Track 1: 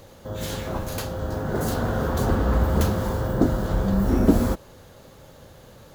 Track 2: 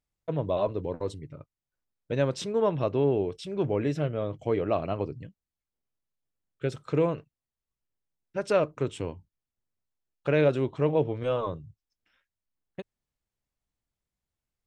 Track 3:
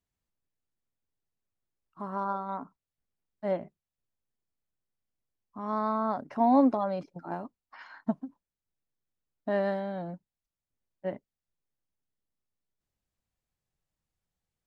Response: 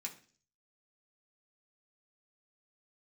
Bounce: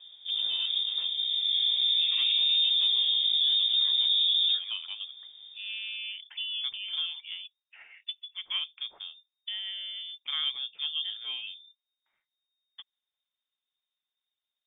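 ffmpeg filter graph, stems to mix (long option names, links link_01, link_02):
-filter_complex "[0:a]firequalizer=gain_entry='entry(410,0);entry(650,-21);entry(2600,-13)':delay=0.05:min_phase=1,acontrast=31,flanger=delay=18:depth=3.5:speed=0.5,volume=-2.5dB[link_01];[1:a]volume=-9dB[link_02];[2:a]acompressor=threshold=-30dB:ratio=6,volume=-3dB[link_03];[link_01][link_02][link_03]amix=inputs=3:normalize=0,lowpass=frequency=3100:width_type=q:width=0.5098,lowpass=frequency=3100:width_type=q:width=0.6013,lowpass=frequency=3100:width_type=q:width=0.9,lowpass=frequency=3100:width_type=q:width=2.563,afreqshift=-3700,alimiter=limit=-18.5dB:level=0:latency=1:release=11"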